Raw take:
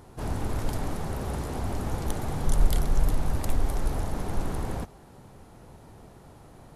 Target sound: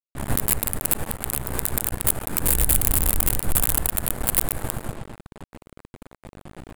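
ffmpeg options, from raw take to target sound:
ffmpeg -i in.wav -filter_complex "[0:a]asplit=4[link_01][link_02][link_03][link_04];[link_02]asetrate=52444,aresample=44100,atempo=0.840896,volume=-15dB[link_05];[link_03]asetrate=66075,aresample=44100,atempo=0.66742,volume=-13dB[link_06];[link_04]asetrate=88200,aresample=44100,atempo=0.5,volume=-1dB[link_07];[link_01][link_05][link_06][link_07]amix=inputs=4:normalize=0,aecho=1:1:123|246|369|492|615:0.631|0.271|0.117|0.0502|0.0216,afftdn=noise_reduction=21:noise_floor=-42,acrusher=bits=4:dc=4:mix=0:aa=0.000001,adynamicsmooth=sensitivity=6.5:basefreq=730,highshelf=frequency=3100:gain=10.5,acontrast=51,aexciter=amount=11.4:drive=7.5:freq=8300,alimiter=limit=-1dB:level=0:latency=1:release=251,volume=-1dB" out.wav

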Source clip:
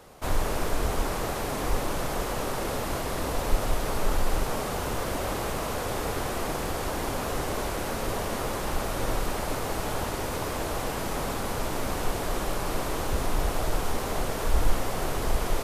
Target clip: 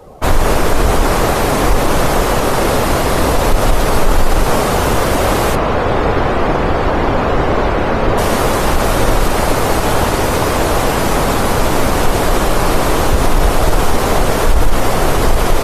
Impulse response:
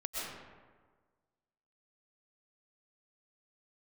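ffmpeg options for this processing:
-filter_complex "[0:a]asettb=1/sr,asplit=3[link_01][link_02][link_03];[link_01]atrim=end=5.554[link_04];[link_02]atrim=start=5.55:end=8.18,asetpts=PTS-STARTPTS,afade=type=in:duration=0.004:curve=qsin,afade=type=out:start_time=2.626:duration=0.004:curve=qsin,lowpass=frequency=2900:poles=1[link_05];[link_03]atrim=start=8.176[link_06];[link_04][link_05]acrossfade=duration=0.004:curve1=hsin:curve2=qsin[link_07];[link_07][link_06]acrossfade=duration=0.004:curve1=qsin:curve2=hsin,afftdn=noise_reduction=16:noise_floor=-47,alimiter=level_in=18dB:limit=-1dB:release=50:level=0:latency=1,volume=-1dB"

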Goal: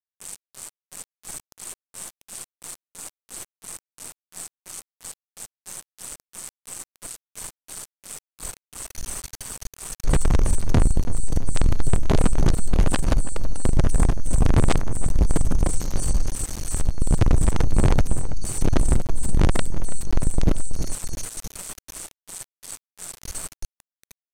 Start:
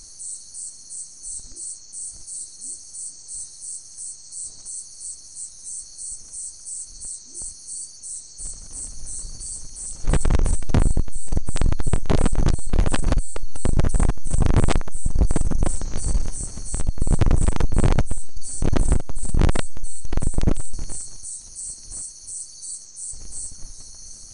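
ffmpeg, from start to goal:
ffmpeg -i in.wav -filter_complex "[0:a]asplit=2[link_01][link_02];[link_02]adelay=329,lowpass=frequency=1300:poles=1,volume=-12dB,asplit=2[link_03][link_04];[link_04]adelay=329,lowpass=frequency=1300:poles=1,volume=0.53,asplit=2[link_05][link_06];[link_06]adelay=329,lowpass=frequency=1300:poles=1,volume=0.53,asplit=2[link_07][link_08];[link_08]adelay=329,lowpass=frequency=1300:poles=1,volume=0.53,asplit=2[link_09][link_10];[link_10]adelay=329,lowpass=frequency=1300:poles=1,volume=0.53,asplit=2[link_11][link_12];[link_12]adelay=329,lowpass=frequency=1300:poles=1,volume=0.53[link_13];[link_01][link_03][link_05][link_07][link_09][link_11][link_13]amix=inputs=7:normalize=0,aeval=exprs='val(0)*gte(abs(val(0)),0.0422)':channel_layout=same,aresample=32000,aresample=44100" out.wav

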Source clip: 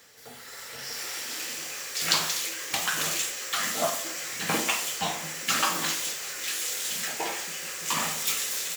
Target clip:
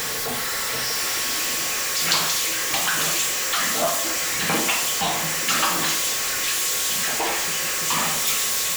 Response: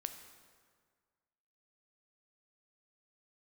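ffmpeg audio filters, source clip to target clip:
-af "aeval=exprs='val(0)+0.5*0.0891*sgn(val(0))':channel_layout=same,aeval=exprs='val(0)+0.0112*sin(2*PI*1100*n/s)':channel_layout=same"

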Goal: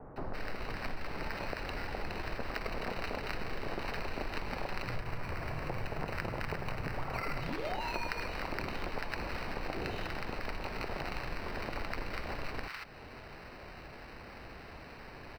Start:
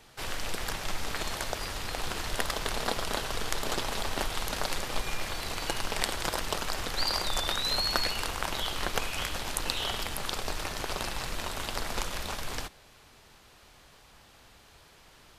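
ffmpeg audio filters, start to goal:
ffmpeg -i in.wav -filter_complex "[0:a]acrusher=samples=13:mix=1:aa=0.000001,asettb=1/sr,asplit=3[link_01][link_02][link_03];[link_01]atrim=end=4.844[link_04];[link_02]atrim=start=4.84:end=7.21,asetpts=PTS-STARTPTS,afade=type=in:duration=0.004:curve=qsin,afade=type=out:start_time=2.366:duration=0.004:curve=qsin,equalizer=frequency=125:width_type=o:width=1:gain=12,equalizer=frequency=250:width_type=o:width=1:gain=-3,equalizer=frequency=4000:width_type=o:width=1:gain=-5[link_05];[link_03]atrim=start=7.206[link_06];[link_04][link_05]acrossfade=duration=0.004:curve1=hsin:curve2=qsin[link_07];[link_07][link_06]acrossfade=duration=0.004:curve1=qsin:curve2=hsin,acrossover=split=1100[link_08][link_09];[link_09]adelay=160[link_10];[link_08][link_10]amix=inputs=2:normalize=0,acompressor=threshold=-49dB:ratio=2.5,highshelf=frequency=5300:width_type=q:width=1.5:gain=-13,volume=8.5dB" out.wav

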